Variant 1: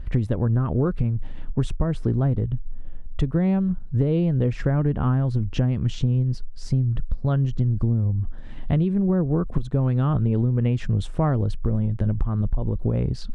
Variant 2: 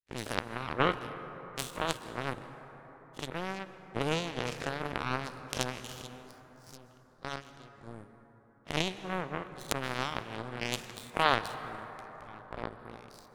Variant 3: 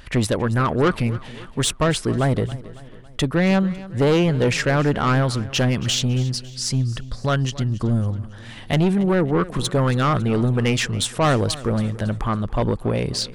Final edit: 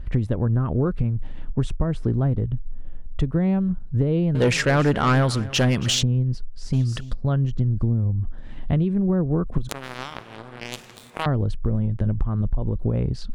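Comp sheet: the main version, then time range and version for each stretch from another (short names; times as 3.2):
1
4.35–6.03 from 3
6.73–7.13 from 3
9.69–11.26 from 2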